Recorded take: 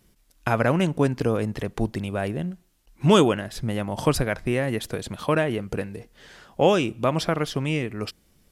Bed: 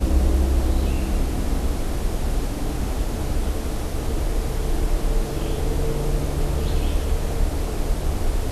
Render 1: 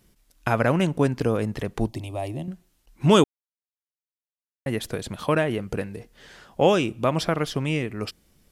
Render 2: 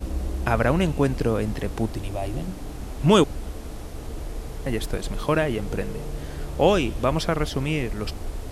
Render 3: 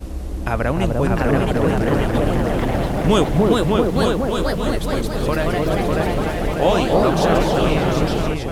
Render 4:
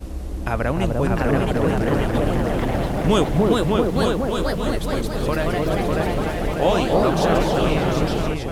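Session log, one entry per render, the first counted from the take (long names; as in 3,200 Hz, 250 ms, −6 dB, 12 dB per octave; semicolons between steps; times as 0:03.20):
0:01.88–0:02.48: phaser with its sweep stopped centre 300 Hz, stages 8; 0:03.24–0:04.66: silence
mix in bed −9.5 dB
on a send: echo whose low-pass opens from repeat to repeat 299 ms, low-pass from 750 Hz, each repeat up 2 octaves, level 0 dB; on the sum: delay with pitch and tempo change per echo 753 ms, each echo +2 semitones, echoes 3
level −2 dB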